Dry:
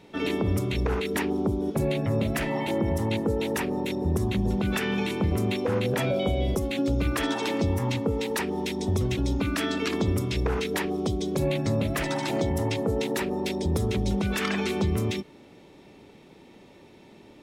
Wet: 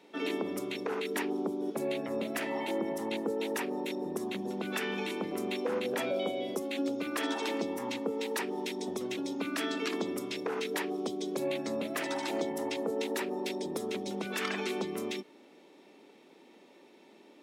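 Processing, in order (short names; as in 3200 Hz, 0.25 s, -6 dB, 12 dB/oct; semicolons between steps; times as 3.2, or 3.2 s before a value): HPF 240 Hz 24 dB/oct; gain -5 dB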